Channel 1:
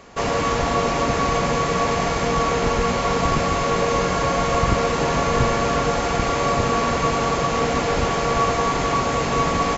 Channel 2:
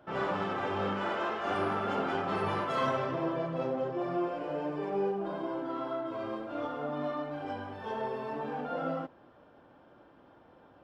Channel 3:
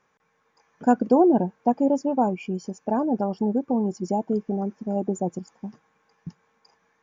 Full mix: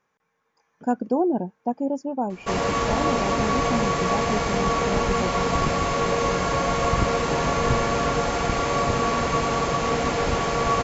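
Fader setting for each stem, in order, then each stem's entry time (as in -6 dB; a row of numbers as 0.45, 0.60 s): -2.5 dB, off, -4.5 dB; 2.30 s, off, 0.00 s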